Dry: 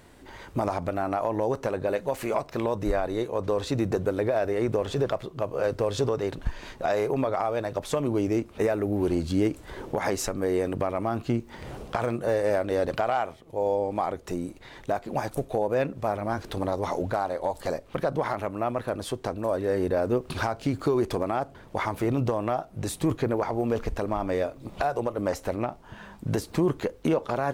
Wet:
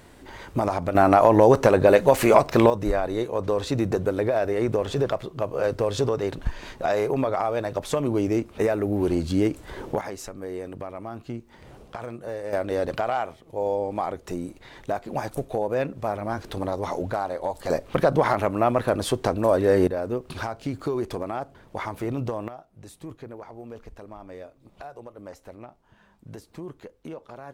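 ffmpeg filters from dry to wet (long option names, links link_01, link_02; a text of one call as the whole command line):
ffmpeg -i in.wav -af "asetnsamples=nb_out_samples=441:pad=0,asendcmd='0.95 volume volume 11.5dB;2.7 volume volume 2dB;10.01 volume volume -8dB;12.53 volume volume 0dB;17.7 volume volume 7dB;19.87 volume volume -3dB;22.48 volume volume -14dB',volume=3dB" out.wav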